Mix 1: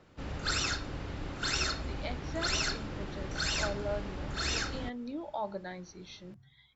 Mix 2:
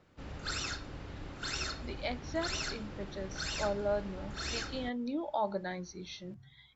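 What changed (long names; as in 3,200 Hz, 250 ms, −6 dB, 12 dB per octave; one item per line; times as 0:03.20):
speech +3.5 dB
background −5.5 dB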